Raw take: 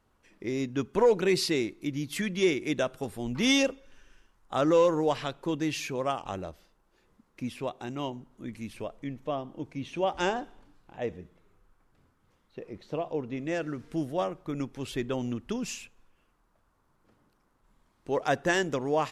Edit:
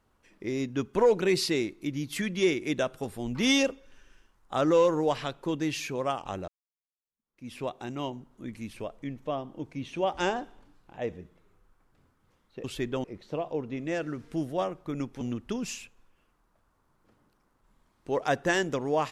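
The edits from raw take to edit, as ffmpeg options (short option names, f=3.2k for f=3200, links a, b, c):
-filter_complex "[0:a]asplit=5[a][b][c][d][e];[a]atrim=end=6.48,asetpts=PTS-STARTPTS,afade=t=out:st=6.476:d=0.004:c=hsin[f];[b]atrim=start=6.48:end=12.642,asetpts=PTS-STARTPTS,afade=t=in:d=1.06:c=exp[g];[c]atrim=start=14.808:end=15.212[h];[d]atrim=start=12.638:end=14.812[i];[e]atrim=start=15.208[j];[f][g]concat=n=2:v=0:a=1[k];[k][h]acrossfade=d=0.004:c1=hsin:c2=hsin[l];[l][i]acrossfade=d=0.004:c1=hsin:c2=hsin[m];[m][j]acrossfade=d=0.004:c1=hsin:c2=hsin"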